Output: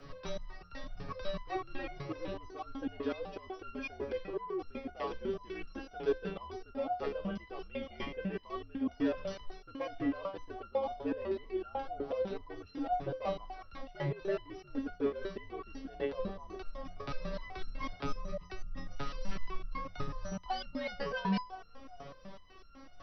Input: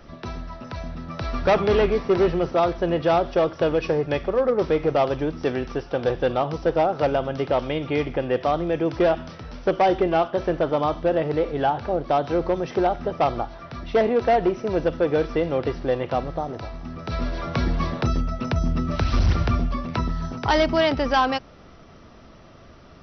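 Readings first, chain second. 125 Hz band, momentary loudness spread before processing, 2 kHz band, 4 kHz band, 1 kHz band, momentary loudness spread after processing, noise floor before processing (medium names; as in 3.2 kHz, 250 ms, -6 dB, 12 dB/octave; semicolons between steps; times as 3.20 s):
-18.0 dB, 10 LU, -14.5 dB, -15.0 dB, -16.5 dB, 12 LU, -47 dBFS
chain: reverse; compression 6:1, threshold -28 dBFS, peak gain reduction 12.5 dB; reverse; frequency shift -70 Hz; band-passed feedback delay 370 ms, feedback 43%, band-pass 560 Hz, level -13 dB; resonator arpeggio 8 Hz 140–1400 Hz; trim +9 dB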